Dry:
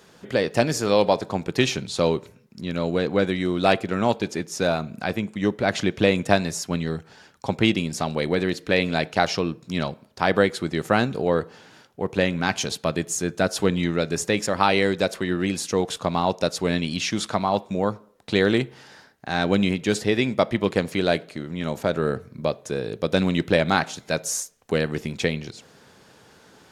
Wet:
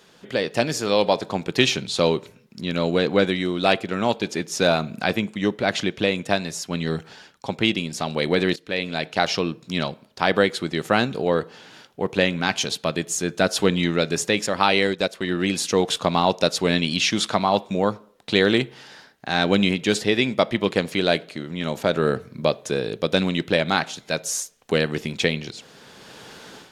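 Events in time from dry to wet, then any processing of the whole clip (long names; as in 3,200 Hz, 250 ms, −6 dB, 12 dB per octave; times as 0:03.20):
0:08.56–0:09.41: fade in, from −15.5 dB
0:14.87–0:15.35: transient designer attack −2 dB, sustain −8 dB
whole clip: parametric band 3,300 Hz +5 dB 1.1 octaves; automatic gain control; parametric band 80 Hz −6 dB 1.1 octaves; level −2 dB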